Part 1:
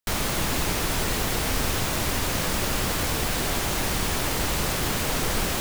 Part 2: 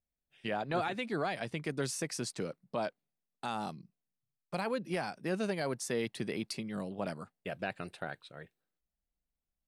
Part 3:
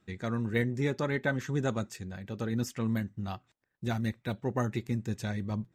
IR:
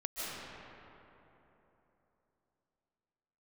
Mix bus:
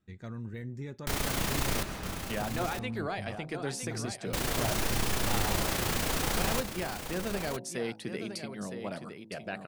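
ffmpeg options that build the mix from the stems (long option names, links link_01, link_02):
-filter_complex "[0:a]tremolo=f=29:d=0.571,adelay=1000,volume=-5.5dB,asplit=3[link_01][link_02][link_03];[link_01]atrim=end=1.83,asetpts=PTS-STARTPTS,afade=type=out:start_time=1.826:duration=0.004:curve=hsin[link_04];[link_02]atrim=start=1.83:end=4.33,asetpts=PTS-STARTPTS,volume=0[link_05];[link_03]atrim=start=4.33,asetpts=PTS-STARTPTS,afade=type=in:duration=0.004:curve=hsin[link_06];[link_04][link_05][link_06]concat=n=3:v=0:a=1,asplit=3[link_07][link_08][link_09];[link_08]volume=-7.5dB[link_10];[link_09]volume=-6dB[link_11];[1:a]bandreject=frequency=54.37:width_type=h:width=4,bandreject=frequency=108.74:width_type=h:width=4,bandreject=frequency=163.11:width_type=h:width=4,bandreject=frequency=217.48:width_type=h:width=4,bandreject=frequency=271.85:width_type=h:width=4,bandreject=frequency=326.22:width_type=h:width=4,bandreject=frequency=380.59:width_type=h:width=4,bandreject=frequency=434.96:width_type=h:width=4,bandreject=frequency=489.33:width_type=h:width=4,bandreject=frequency=543.7:width_type=h:width=4,bandreject=frequency=598.07:width_type=h:width=4,bandreject=frequency=652.44:width_type=h:width=4,bandreject=frequency=706.81:width_type=h:width=4,bandreject=frequency=761.18:width_type=h:width=4,bandreject=frequency=815.55:width_type=h:width=4,bandreject=frequency=869.92:width_type=h:width=4,bandreject=frequency=924.29:width_type=h:width=4,bandreject=frequency=978.66:width_type=h:width=4,adelay=1850,volume=-0.5dB,asplit=2[link_12][link_13];[link_13]volume=-8.5dB[link_14];[2:a]lowshelf=frequency=150:gain=9.5,alimiter=limit=-21dB:level=0:latency=1:release=29,volume=-11dB[link_15];[3:a]atrim=start_sample=2205[link_16];[link_10][link_16]afir=irnorm=-1:irlink=0[link_17];[link_11][link_14]amix=inputs=2:normalize=0,aecho=0:1:962:1[link_18];[link_07][link_12][link_15][link_17][link_18]amix=inputs=5:normalize=0"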